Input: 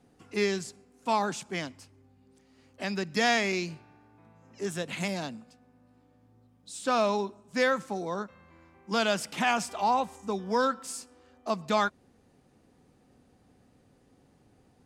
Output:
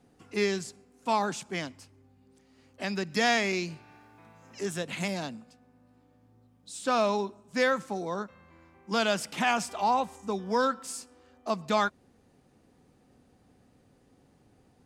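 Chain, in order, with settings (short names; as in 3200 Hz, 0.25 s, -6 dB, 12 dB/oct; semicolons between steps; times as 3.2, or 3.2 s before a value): 2.84–4.83 mismatched tape noise reduction encoder only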